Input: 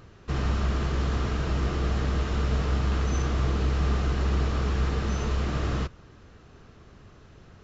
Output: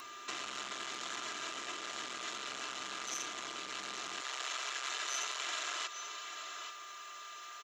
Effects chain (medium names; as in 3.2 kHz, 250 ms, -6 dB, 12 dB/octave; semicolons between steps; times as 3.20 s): peaking EQ 5.4 kHz -6 dB 0.28 oct; band-stop 4.6 kHz, Q 8.6; comb 3 ms, depth 86%; delay 837 ms -17.5 dB; saturation -23.5 dBFS, distortion -12 dB; gain riding within 4 dB 0.5 s; Bessel high-pass 170 Hz, order 4, from 4.20 s 600 Hz; compression, threshold -37 dBFS, peak gain reduction 7.5 dB; whistle 1.2 kHz -48 dBFS; differentiator; loudspeaker Doppler distortion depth 0.98 ms; trim +14.5 dB